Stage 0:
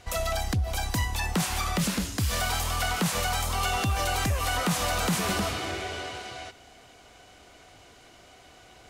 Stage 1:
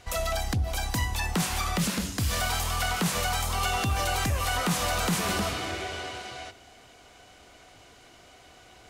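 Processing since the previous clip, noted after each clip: de-hum 48.08 Hz, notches 18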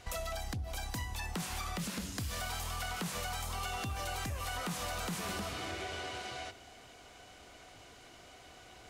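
compressor 4:1, threshold -35 dBFS, peak gain reduction 10.5 dB; gain -2 dB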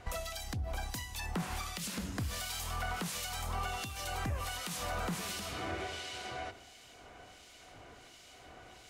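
harmonic tremolo 1.4 Hz, depth 70%, crossover 2200 Hz; gain +3.5 dB

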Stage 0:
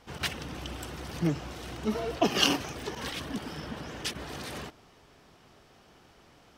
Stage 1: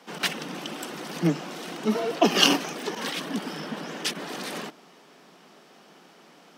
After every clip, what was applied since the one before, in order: steep high-pass 160 Hz 72 dB/oct; gain +5.5 dB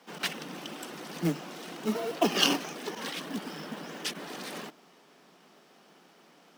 short-mantissa float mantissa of 2-bit; gain -5.5 dB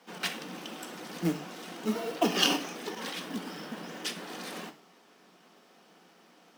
non-linear reverb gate 0.14 s falling, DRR 6.5 dB; gain -1.5 dB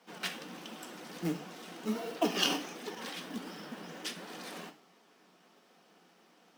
flange 1.4 Hz, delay 3.9 ms, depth 8.7 ms, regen +66%

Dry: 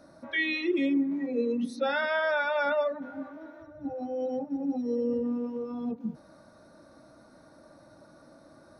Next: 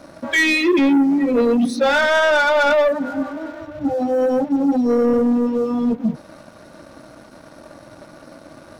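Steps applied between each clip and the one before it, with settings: sample leveller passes 2; gain +8 dB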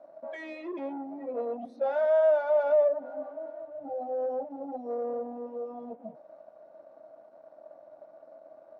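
band-pass 650 Hz, Q 6.1; gain -3 dB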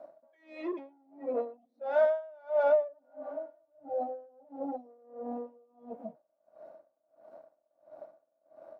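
dB-linear tremolo 1.5 Hz, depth 32 dB; gain +3.5 dB

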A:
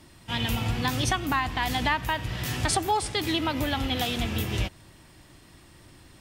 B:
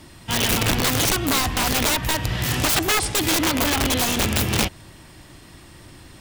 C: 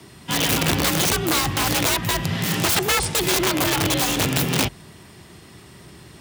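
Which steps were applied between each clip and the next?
wrapped overs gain 21.5 dB; gain +7.5 dB
frequency shift +49 Hz

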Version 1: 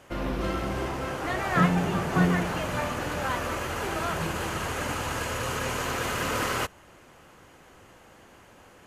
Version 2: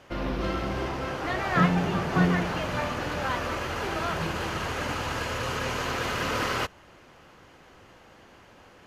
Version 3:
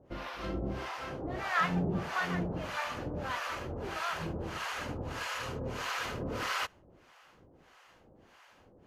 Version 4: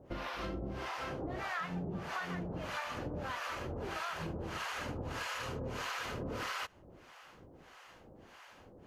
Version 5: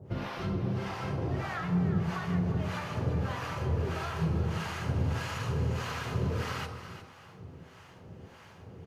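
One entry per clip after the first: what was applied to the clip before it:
resonant high shelf 6400 Hz -6.5 dB, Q 1.5
harmonic tremolo 1.6 Hz, depth 100%, crossover 670 Hz; gain -2.5 dB
compressor 6:1, threshold -40 dBFS, peak gain reduction 14.5 dB; gain +3.5 dB
echo 0.356 s -11.5 dB; on a send at -3.5 dB: reverb RT60 1.0 s, pre-delay 3 ms

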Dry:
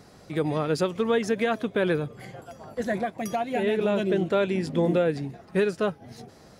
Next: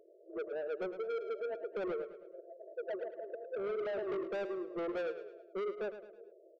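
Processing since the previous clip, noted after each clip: FFT band-pass 330–680 Hz; soft clip -30 dBFS, distortion -7 dB; feedback echo 0.107 s, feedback 42%, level -11 dB; gain -4.5 dB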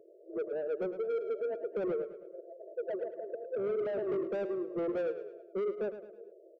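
graphic EQ 125/250/500/4000 Hz +11/+7/+5/-4 dB; gain -2.5 dB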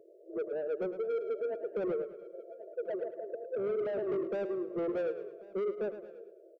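echo 1.088 s -21 dB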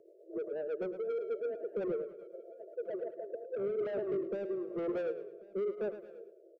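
rotary speaker horn 8 Hz, later 0.9 Hz, at 3.07

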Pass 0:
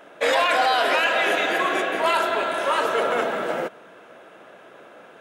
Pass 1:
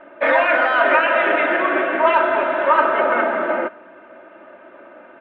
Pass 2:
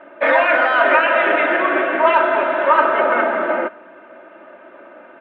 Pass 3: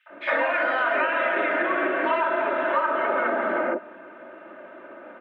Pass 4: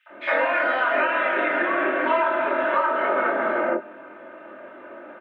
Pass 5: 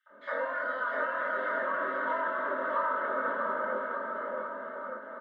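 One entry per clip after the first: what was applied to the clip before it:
LPF 2300 Hz 24 dB/oct; dynamic EQ 1400 Hz, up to +4 dB, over -36 dBFS, Q 0.89; comb 3.3 ms, depth 84%; gain +1.5 dB
low shelf 80 Hz -9.5 dB; gain +1.5 dB
three bands offset in time highs, mids, lows 60/100 ms, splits 780/2800 Hz; compressor 4:1, threshold -21 dBFS, peak gain reduction 9.5 dB
doubler 23 ms -3.5 dB
fixed phaser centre 500 Hz, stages 8; on a send: bouncing-ball echo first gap 0.65 s, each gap 0.85×, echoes 5; on the sum: gain -8.5 dB

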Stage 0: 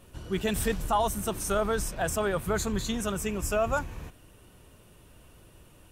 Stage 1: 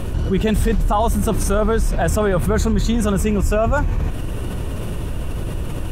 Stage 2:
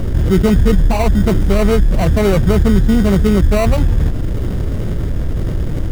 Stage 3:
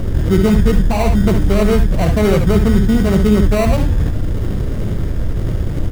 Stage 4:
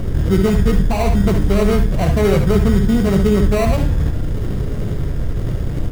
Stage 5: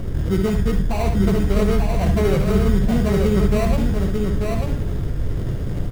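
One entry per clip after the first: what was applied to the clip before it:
tilt -2 dB/oct; fast leveller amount 70%; gain +4.5 dB
median filter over 41 samples; in parallel at -5 dB: sample-and-hold 26×; on the sum: gain +3 dB
early reflections 61 ms -9.5 dB, 71 ms -9 dB; gain -1 dB
reverb RT60 0.70 s, pre-delay 3 ms, DRR 10 dB; gain -2 dB
echo 0.892 s -4 dB; gain -5 dB

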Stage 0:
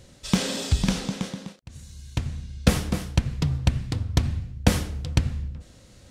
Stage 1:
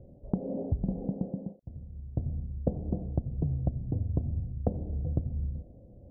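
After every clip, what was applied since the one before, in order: steep low-pass 710 Hz 48 dB/oct; compressor 5:1, threshold -26 dBFS, peak gain reduction 13 dB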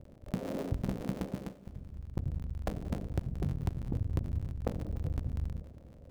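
cycle switcher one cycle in 3, muted; soft clip -21.5 dBFS, distortion -15 dB; multi-head echo 96 ms, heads second and third, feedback 50%, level -21 dB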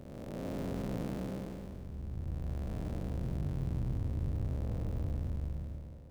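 time blur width 0.545 s; reverb, pre-delay 92 ms, DRR 9.5 dB; gain +2 dB

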